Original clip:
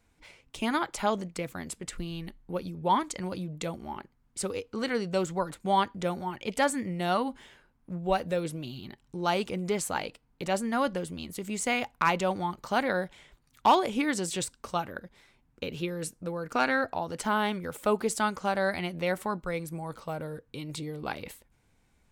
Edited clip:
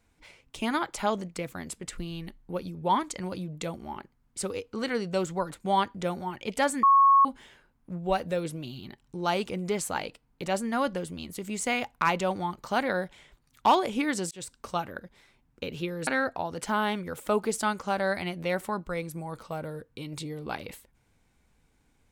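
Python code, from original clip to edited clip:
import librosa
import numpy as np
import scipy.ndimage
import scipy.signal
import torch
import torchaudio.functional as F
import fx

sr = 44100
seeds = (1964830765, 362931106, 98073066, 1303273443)

y = fx.edit(x, sr, fx.bleep(start_s=6.83, length_s=0.42, hz=1100.0, db=-15.0),
    fx.fade_in_span(start_s=14.31, length_s=0.26),
    fx.cut(start_s=16.07, length_s=0.57), tone=tone)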